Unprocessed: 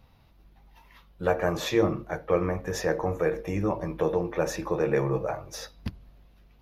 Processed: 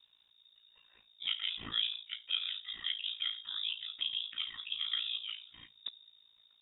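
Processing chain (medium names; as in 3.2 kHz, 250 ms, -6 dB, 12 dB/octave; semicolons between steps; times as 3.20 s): ring modulator 28 Hz; frequency inversion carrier 3.7 kHz; trim -8.5 dB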